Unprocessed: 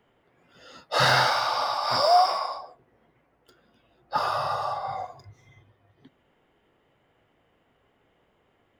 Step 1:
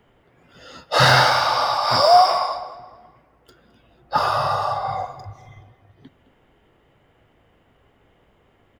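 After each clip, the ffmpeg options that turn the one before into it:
-filter_complex "[0:a]lowshelf=f=110:g=9.5,asplit=2[a][b];[b]adelay=213,lowpass=f=3.6k:p=1,volume=-15dB,asplit=2[c][d];[d]adelay=213,lowpass=f=3.6k:p=1,volume=0.4,asplit=2[e][f];[f]adelay=213,lowpass=f=3.6k:p=1,volume=0.4,asplit=2[g][h];[h]adelay=213,lowpass=f=3.6k:p=1,volume=0.4[i];[a][c][e][g][i]amix=inputs=5:normalize=0,volume=6dB"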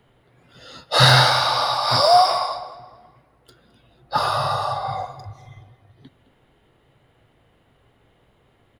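-af "equalizer=f=125:t=o:w=0.33:g=7,equalizer=f=4k:t=o:w=0.33:g=9,equalizer=f=10k:t=o:w=0.33:g=10,volume=-1.5dB"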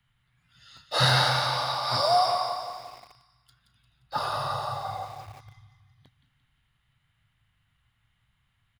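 -filter_complex "[0:a]aecho=1:1:175|350|525|700|875|1050:0.376|0.188|0.094|0.047|0.0235|0.0117,acrossover=split=170|1100|2900[a][b][c][d];[b]aeval=exprs='val(0)*gte(abs(val(0)),0.0119)':c=same[e];[a][e][c][d]amix=inputs=4:normalize=0,volume=-8.5dB"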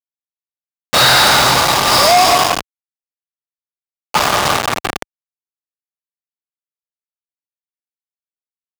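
-filter_complex "[0:a]aeval=exprs='val(0)*gte(abs(val(0)),0.0501)':c=same,asplit=2[a][b];[b]highpass=f=720:p=1,volume=35dB,asoftclip=type=tanh:threshold=-8.5dB[c];[a][c]amix=inputs=2:normalize=0,lowpass=f=7.3k:p=1,volume=-6dB,highpass=f=52:p=1,volume=5dB"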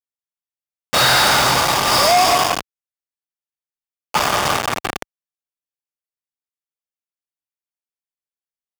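-af "bandreject=f=4k:w=13,volume=-3.5dB"

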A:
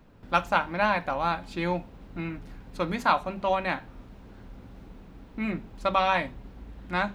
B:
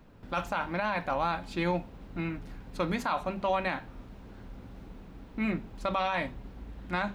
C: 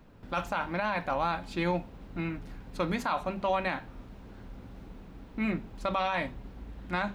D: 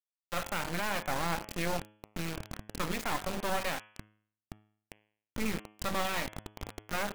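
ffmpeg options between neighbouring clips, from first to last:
-af "alimiter=limit=-19dB:level=0:latency=1:release=33"
-af anull
-af "aphaser=in_gain=1:out_gain=1:delay=1.9:decay=0.31:speed=1.5:type=triangular,acrusher=bits=3:dc=4:mix=0:aa=0.000001,bandreject=f=106.1:t=h:w=4,bandreject=f=212.2:t=h:w=4,bandreject=f=318.3:t=h:w=4,bandreject=f=424.4:t=h:w=4,bandreject=f=530.5:t=h:w=4,bandreject=f=636.6:t=h:w=4,bandreject=f=742.7:t=h:w=4,bandreject=f=848.8:t=h:w=4,bandreject=f=954.9:t=h:w=4,bandreject=f=1.061k:t=h:w=4,bandreject=f=1.1671k:t=h:w=4,bandreject=f=1.2732k:t=h:w=4,bandreject=f=1.3793k:t=h:w=4,bandreject=f=1.4854k:t=h:w=4,bandreject=f=1.5915k:t=h:w=4,bandreject=f=1.6976k:t=h:w=4,bandreject=f=1.8037k:t=h:w=4,bandreject=f=1.9098k:t=h:w=4,bandreject=f=2.0159k:t=h:w=4,bandreject=f=2.122k:t=h:w=4,bandreject=f=2.2281k:t=h:w=4,bandreject=f=2.3342k:t=h:w=4,bandreject=f=2.4403k:t=h:w=4,bandreject=f=2.5464k:t=h:w=4,bandreject=f=2.6525k:t=h:w=4,bandreject=f=2.7586k:t=h:w=4,bandreject=f=2.8647k:t=h:w=4,bandreject=f=2.9708k:t=h:w=4,bandreject=f=3.0769k:t=h:w=4,bandreject=f=3.183k:t=h:w=4,bandreject=f=3.2891k:t=h:w=4,bandreject=f=3.3952k:t=h:w=4"

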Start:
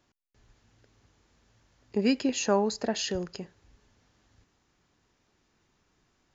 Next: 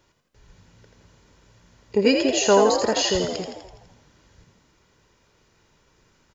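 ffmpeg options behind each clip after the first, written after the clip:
-filter_complex "[0:a]aecho=1:1:2.1:0.45,asplit=2[a][b];[b]asplit=7[c][d][e][f][g][h][i];[c]adelay=83,afreqshift=64,volume=-5.5dB[j];[d]adelay=166,afreqshift=128,volume=-10.5dB[k];[e]adelay=249,afreqshift=192,volume=-15.6dB[l];[f]adelay=332,afreqshift=256,volume=-20.6dB[m];[g]adelay=415,afreqshift=320,volume=-25.6dB[n];[h]adelay=498,afreqshift=384,volume=-30.7dB[o];[i]adelay=581,afreqshift=448,volume=-35.7dB[p];[j][k][l][m][n][o][p]amix=inputs=7:normalize=0[q];[a][q]amix=inputs=2:normalize=0,volume=7dB"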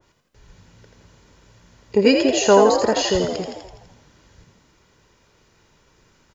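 -af "adynamicequalizer=threshold=0.0126:dfrequency=2000:dqfactor=0.7:tfrequency=2000:tqfactor=0.7:attack=5:release=100:ratio=0.375:range=2.5:mode=cutabove:tftype=highshelf,volume=3.5dB"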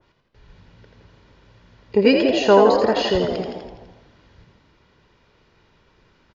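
-filter_complex "[0:a]lowpass=f=4.5k:w=0.5412,lowpass=f=4.5k:w=1.3066,asplit=2[a][b];[b]adelay=165,lowpass=f=1.1k:p=1,volume=-11dB,asplit=2[c][d];[d]adelay=165,lowpass=f=1.1k:p=1,volume=0.43,asplit=2[e][f];[f]adelay=165,lowpass=f=1.1k:p=1,volume=0.43,asplit=2[g][h];[h]adelay=165,lowpass=f=1.1k:p=1,volume=0.43[i];[c][e][g][i]amix=inputs=4:normalize=0[j];[a][j]amix=inputs=2:normalize=0"

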